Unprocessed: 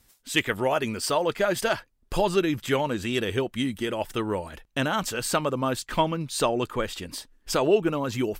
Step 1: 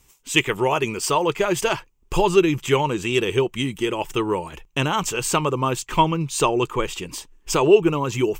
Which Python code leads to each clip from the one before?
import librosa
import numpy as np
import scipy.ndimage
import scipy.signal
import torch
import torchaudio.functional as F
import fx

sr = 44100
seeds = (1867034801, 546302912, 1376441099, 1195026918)

y = fx.ripple_eq(x, sr, per_octave=0.72, db=9)
y = y * librosa.db_to_amplitude(3.5)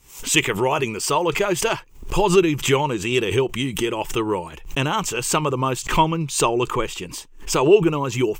y = fx.pre_swell(x, sr, db_per_s=120.0)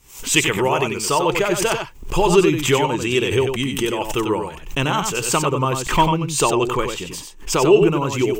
y = x + 10.0 ** (-6.0 / 20.0) * np.pad(x, (int(93 * sr / 1000.0), 0))[:len(x)]
y = y * librosa.db_to_amplitude(1.0)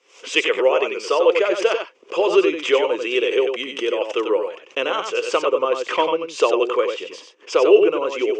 y = fx.cabinet(x, sr, low_hz=380.0, low_slope=24, high_hz=4900.0, hz=(510.0, 870.0, 1700.0, 4100.0), db=(10, -9, -3, -8))